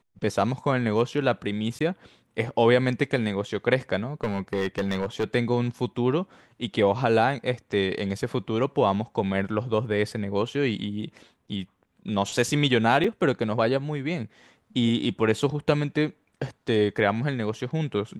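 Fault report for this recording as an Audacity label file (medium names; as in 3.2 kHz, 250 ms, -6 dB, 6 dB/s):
1.790000	1.800000	dropout 15 ms
4.230000	5.240000	clipped -21 dBFS
13.040000	13.040000	dropout 3.8 ms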